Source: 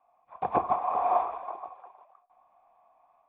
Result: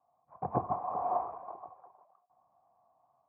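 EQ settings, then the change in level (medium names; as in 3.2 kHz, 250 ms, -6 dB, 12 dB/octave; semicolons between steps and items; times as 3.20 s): Gaussian low-pass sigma 6.1 samples; high-pass 60 Hz; peaking EQ 120 Hz +13 dB 1.4 oct; -5.0 dB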